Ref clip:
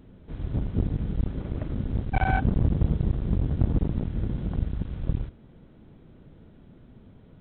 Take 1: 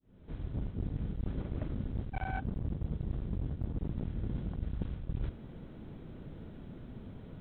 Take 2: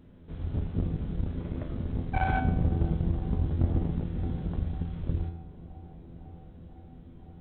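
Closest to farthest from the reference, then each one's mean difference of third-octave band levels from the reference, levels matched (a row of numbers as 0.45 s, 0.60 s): 2, 1; 1.5 dB, 4.5 dB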